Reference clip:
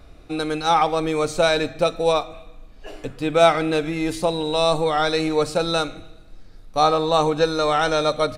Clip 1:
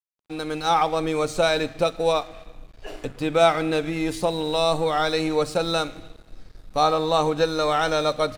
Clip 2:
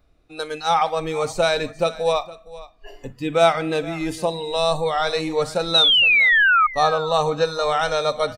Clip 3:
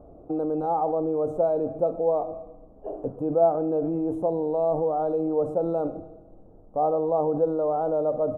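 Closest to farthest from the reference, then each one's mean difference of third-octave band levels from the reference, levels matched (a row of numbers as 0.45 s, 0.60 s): 1, 2, 3; 1.5 dB, 4.0 dB, 12.0 dB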